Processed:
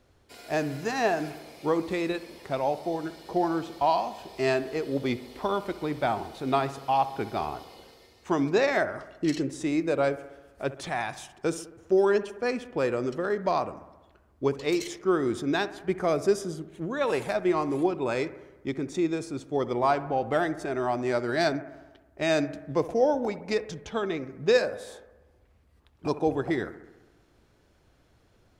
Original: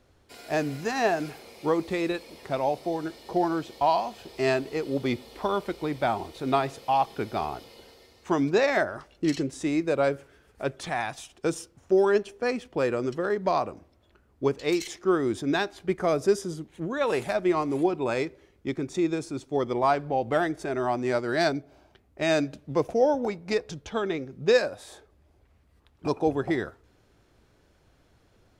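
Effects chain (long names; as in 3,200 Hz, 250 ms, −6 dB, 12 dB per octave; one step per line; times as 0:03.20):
bucket-brigade delay 66 ms, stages 1,024, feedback 67%, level −16 dB
level −1 dB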